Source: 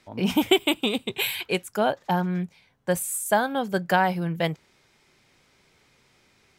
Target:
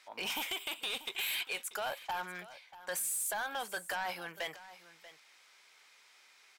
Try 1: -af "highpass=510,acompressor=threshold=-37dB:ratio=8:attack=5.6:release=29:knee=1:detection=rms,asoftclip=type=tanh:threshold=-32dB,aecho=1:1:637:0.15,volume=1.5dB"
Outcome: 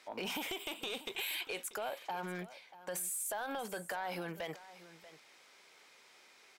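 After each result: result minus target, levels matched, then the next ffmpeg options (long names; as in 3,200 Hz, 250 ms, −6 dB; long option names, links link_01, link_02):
downward compressor: peak gain reduction +7 dB; 500 Hz band +5.0 dB
-af "highpass=510,acompressor=threshold=-31dB:ratio=8:attack=5.6:release=29:knee=1:detection=rms,asoftclip=type=tanh:threshold=-32dB,aecho=1:1:637:0.15,volume=1.5dB"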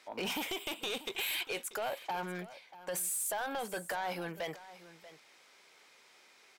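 500 Hz band +4.5 dB
-af "highpass=1000,acompressor=threshold=-31dB:ratio=8:attack=5.6:release=29:knee=1:detection=rms,asoftclip=type=tanh:threshold=-32dB,aecho=1:1:637:0.15,volume=1.5dB"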